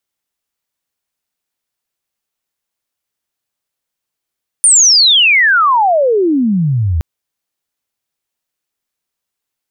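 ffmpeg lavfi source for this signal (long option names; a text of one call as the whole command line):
ffmpeg -f lavfi -i "aevalsrc='pow(10,(-4-7*t/2.37)/20)*sin(2*PI*9400*2.37/log(75/9400)*(exp(log(75/9400)*t/2.37)-1))':duration=2.37:sample_rate=44100" out.wav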